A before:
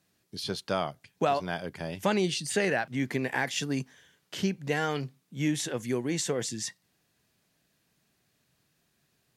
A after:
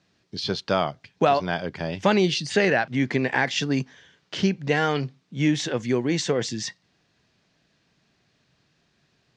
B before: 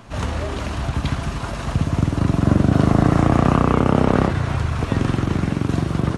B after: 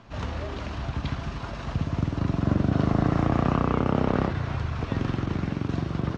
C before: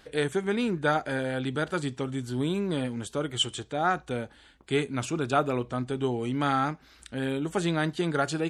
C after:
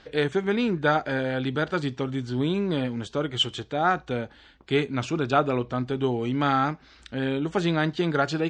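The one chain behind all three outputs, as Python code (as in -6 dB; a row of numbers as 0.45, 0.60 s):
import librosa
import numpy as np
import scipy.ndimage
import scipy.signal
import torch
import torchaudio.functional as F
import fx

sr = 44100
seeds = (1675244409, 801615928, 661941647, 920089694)

y = scipy.signal.sosfilt(scipy.signal.butter(4, 5800.0, 'lowpass', fs=sr, output='sos'), x)
y = y * 10.0 ** (-26 / 20.0) / np.sqrt(np.mean(np.square(y)))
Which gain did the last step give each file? +6.5, -7.5, +3.0 dB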